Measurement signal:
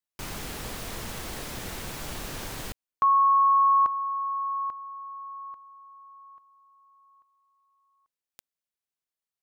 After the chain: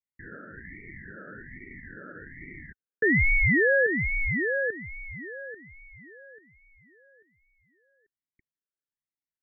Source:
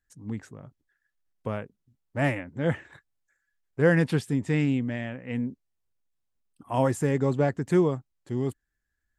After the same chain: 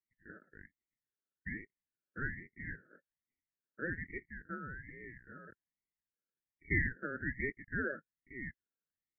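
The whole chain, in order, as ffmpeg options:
-filter_complex "[0:a]asplit=2[a][b];[b]acrusher=bits=5:mix=0:aa=0.000001,volume=-6dB[c];[a][c]amix=inputs=2:normalize=0,asoftclip=type=tanh:threshold=-20dB,asuperpass=centerf=920:order=12:qfactor=2.1,aeval=exprs='val(0)*sin(2*PI*840*n/s+840*0.35/1.2*sin(2*PI*1.2*n/s))':c=same,volume=4dB"

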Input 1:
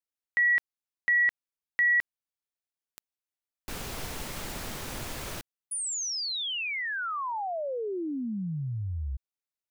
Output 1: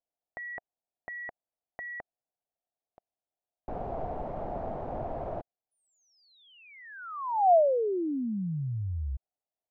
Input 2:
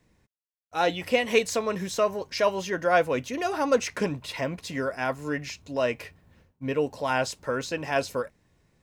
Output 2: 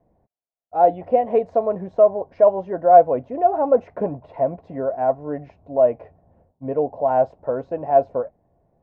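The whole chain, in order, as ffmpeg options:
-af "lowpass=f=700:t=q:w=5"

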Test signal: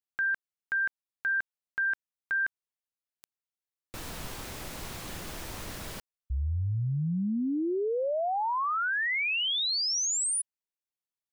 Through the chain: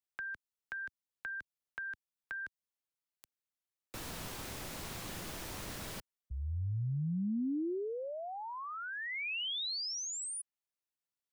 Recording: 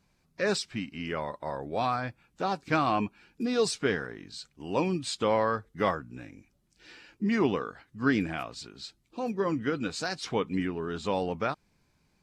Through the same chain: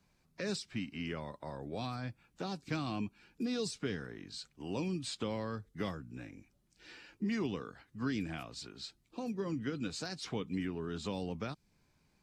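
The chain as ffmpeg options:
-filter_complex "[0:a]acrossover=split=82|320|3100[a][b][c][d];[a]acompressor=threshold=-48dB:ratio=4[e];[b]acompressor=threshold=-32dB:ratio=4[f];[c]acompressor=threshold=-42dB:ratio=4[g];[d]acompressor=threshold=-39dB:ratio=4[h];[e][f][g][h]amix=inputs=4:normalize=0,volume=-2.5dB"

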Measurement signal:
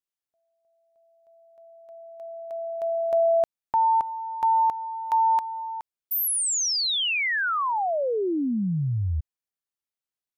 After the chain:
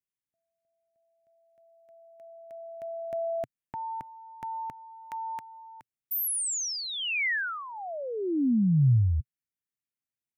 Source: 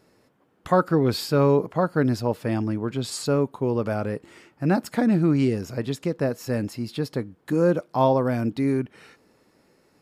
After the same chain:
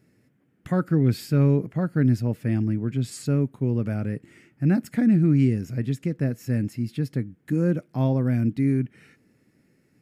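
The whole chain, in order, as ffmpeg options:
-af "equalizer=f=125:t=o:w=1:g=9,equalizer=f=250:t=o:w=1:g=5,equalizer=f=500:t=o:w=1:g=-4,equalizer=f=1k:t=o:w=1:g=-12,equalizer=f=2k:t=o:w=1:g=6,equalizer=f=4k:t=o:w=1:g=-7,volume=-4dB"

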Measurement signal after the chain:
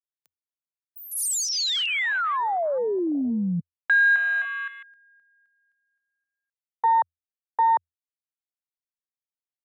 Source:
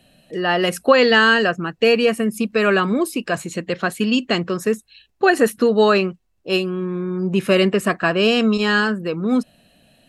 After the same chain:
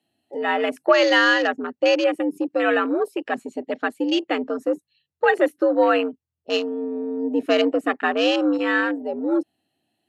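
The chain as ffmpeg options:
-af "afreqshift=83,afwtdn=0.0562,volume=-3dB"

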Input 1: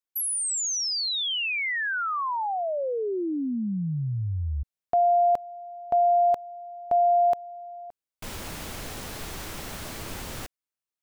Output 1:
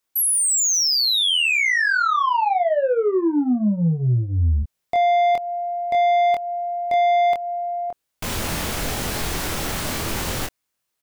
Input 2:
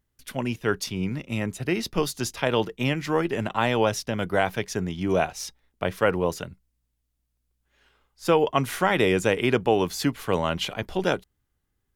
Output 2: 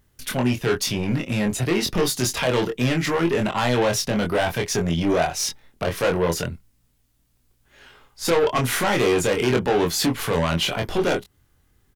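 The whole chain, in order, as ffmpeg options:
-filter_complex "[0:a]asplit=2[a][b];[b]acompressor=threshold=-32dB:ratio=6:attack=0.13:release=166:detection=rms,volume=3dB[c];[a][c]amix=inputs=2:normalize=0,asoftclip=type=tanh:threshold=-22dB,asplit=2[d][e];[e]adelay=24,volume=-4dB[f];[d][f]amix=inputs=2:normalize=0,volume=5dB"

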